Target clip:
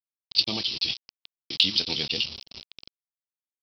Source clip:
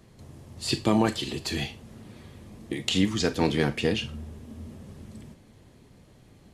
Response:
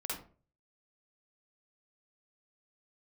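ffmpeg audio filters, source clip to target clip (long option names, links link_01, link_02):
-af "adynamicsmooth=sensitivity=5:basefreq=2100,aresample=11025,acrusher=bits=5:mix=0:aa=0.000001,aresample=44100,aexciter=amount=15.9:drive=5:freq=2700,atempo=1.8,volume=-11.5dB"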